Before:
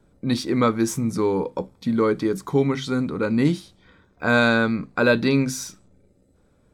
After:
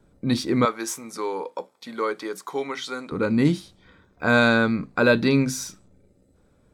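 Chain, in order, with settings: 0.65–3.12 s: high-pass 590 Hz 12 dB/octave

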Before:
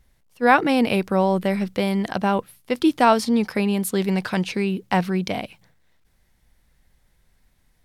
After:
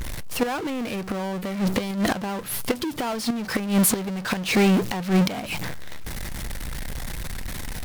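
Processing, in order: inverted gate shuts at -14 dBFS, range -36 dB; power-law waveshaper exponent 0.35

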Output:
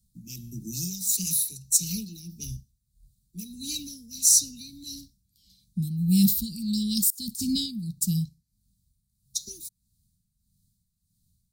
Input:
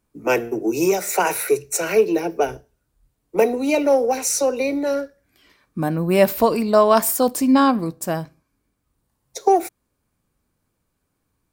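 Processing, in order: Chebyshev band-stop 200–3900 Hz, order 4; dynamic bell 270 Hz, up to -4 dB, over -43 dBFS, Q 3.4; 7.10–7.66 s: compressor with a negative ratio -32 dBFS, ratio -0.5; tremolo 1.6 Hz, depth 66%; trim +5.5 dB

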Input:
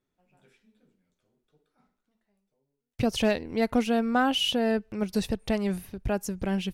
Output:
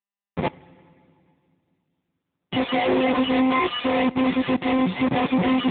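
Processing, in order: partials quantised in pitch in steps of 6 st; in parallel at -2 dB: compression 10:1, threshold -36 dBFS, peak gain reduction 18.5 dB; on the sum: waveshaping leveller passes 3; tape speed +18%; Schmitt trigger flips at -38.5 dBFS; comb of notches 1.5 kHz; on a send at -19.5 dB: reverberation RT60 2.6 s, pre-delay 4 ms; on the sum: trim +2 dB; AMR-NB 6.7 kbps 8 kHz

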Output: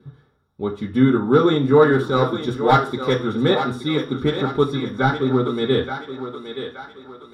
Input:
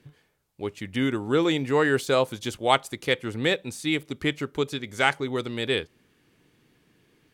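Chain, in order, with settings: one-sided wavefolder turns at -14 dBFS; 1.84–2.48 s: transient shaper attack -8 dB, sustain -3 dB; 4.74–5.43 s: treble shelf 3.2 kHz -11.5 dB; thinning echo 874 ms, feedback 46%, high-pass 370 Hz, level -8 dB; reverberation RT60 0.40 s, pre-delay 3 ms, DRR -2.5 dB; trim -5 dB

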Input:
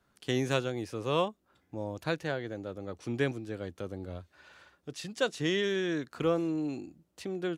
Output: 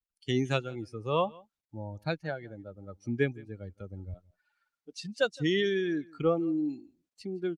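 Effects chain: expander on every frequency bin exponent 2; low-pass 5.6 kHz 12 dB/octave; in parallel at -1 dB: compression 4:1, threshold -45 dBFS, peak gain reduction 16.5 dB; 4.14–4.99 s: on the sum: brick-wall FIR high-pass 170 Hz; on a send: delay 166 ms -24 dB; on the sum: trim +3 dB; Opus 48 kbps 48 kHz

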